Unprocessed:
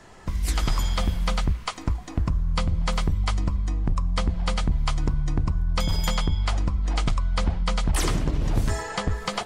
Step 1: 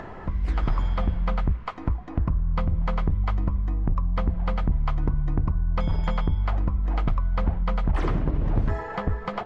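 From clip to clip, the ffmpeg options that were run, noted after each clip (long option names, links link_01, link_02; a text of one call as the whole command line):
ffmpeg -i in.wav -af "lowpass=1600,acompressor=mode=upward:threshold=-28dB:ratio=2.5" out.wav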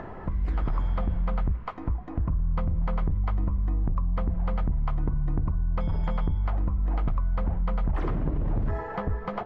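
ffmpeg -i in.wav -af "highshelf=frequency=2600:gain=-11,alimiter=limit=-20dB:level=0:latency=1:release=23" out.wav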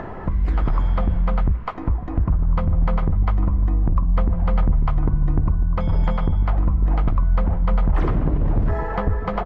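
ffmpeg -i in.wav -filter_complex "[0:a]asplit=2[link_01][link_02];[link_02]adelay=1749,volume=-10dB,highshelf=frequency=4000:gain=-39.4[link_03];[link_01][link_03]amix=inputs=2:normalize=0,volume=7dB" out.wav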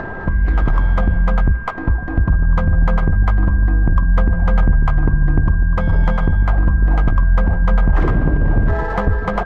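ffmpeg -i in.wav -af "adynamicsmooth=sensitivity=6.5:basefreq=2600,aeval=exprs='val(0)+0.0178*sin(2*PI*1600*n/s)':channel_layout=same,volume=4.5dB" out.wav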